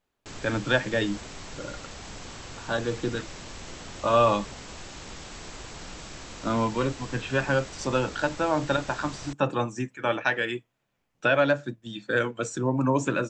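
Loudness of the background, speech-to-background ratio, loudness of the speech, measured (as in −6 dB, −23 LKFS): −41.0 LKFS, 14.0 dB, −27.0 LKFS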